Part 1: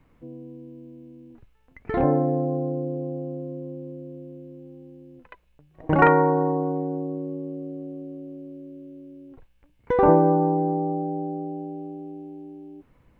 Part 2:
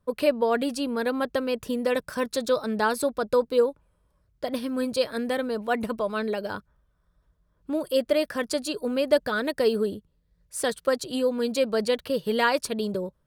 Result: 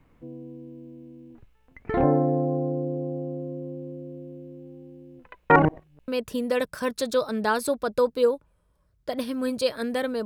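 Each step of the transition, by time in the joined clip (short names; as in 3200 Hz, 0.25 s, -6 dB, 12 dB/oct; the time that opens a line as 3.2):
part 1
5.5–6.08 reverse
6.08 switch to part 2 from 1.43 s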